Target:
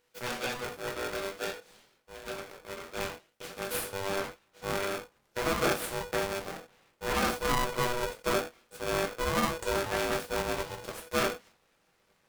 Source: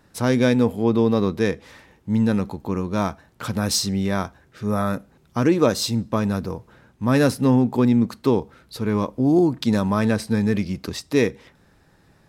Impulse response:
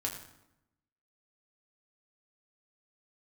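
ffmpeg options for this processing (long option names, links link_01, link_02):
-filter_complex "[0:a]asetnsamples=nb_out_samples=441:pad=0,asendcmd='3.93 highpass f 170',highpass=550,aeval=exprs='abs(val(0))':channel_layout=same[link_01];[1:a]atrim=start_sample=2205,atrim=end_sample=4410,asetrate=48510,aresample=44100[link_02];[link_01][link_02]afir=irnorm=-1:irlink=0,aeval=exprs='val(0)*sgn(sin(2*PI*490*n/s))':channel_layout=same,volume=-8dB"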